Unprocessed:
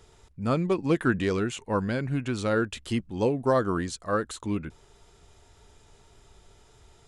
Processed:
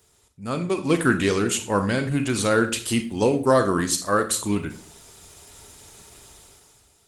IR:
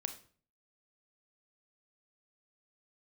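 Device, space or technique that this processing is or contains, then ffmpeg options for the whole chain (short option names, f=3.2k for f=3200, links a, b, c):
far-field microphone of a smart speaker: -filter_complex "[0:a]aemphasis=mode=production:type=75fm[a];[1:a]atrim=start_sample=2205[b];[a][b]afir=irnorm=-1:irlink=0,highpass=f=91:p=1,dynaudnorm=f=110:g=13:m=14.5dB,volume=-4dB" -ar 48000 -c:a libopus -b:a 20k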